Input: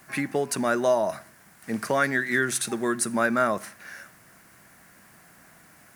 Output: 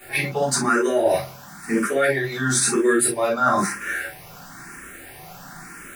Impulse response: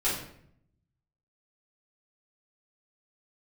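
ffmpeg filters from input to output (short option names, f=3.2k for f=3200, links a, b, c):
-filter_complex "[1:a]atrim=start_sample=2205,atrim=end_sample=3528[a];[0:a][a]afir=irnorm=-1:irlink=0,areverse,acompressor=threshold=-22dB:ratio=6,areverse,asplit=2[b][c];[c]afreqshift=1[d];[b][d]amix=inputs=2:normalize=1,volume=8dB"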